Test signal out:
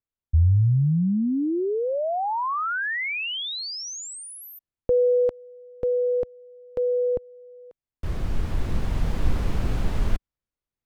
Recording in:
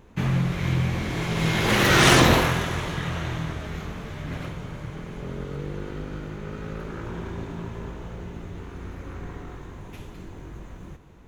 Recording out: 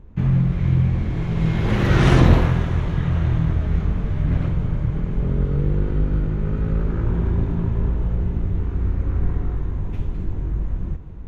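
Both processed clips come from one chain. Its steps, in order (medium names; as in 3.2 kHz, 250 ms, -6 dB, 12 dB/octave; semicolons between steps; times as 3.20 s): RIAA curve playback; gain riding within 4 dB 2 s; trim -2.5 dB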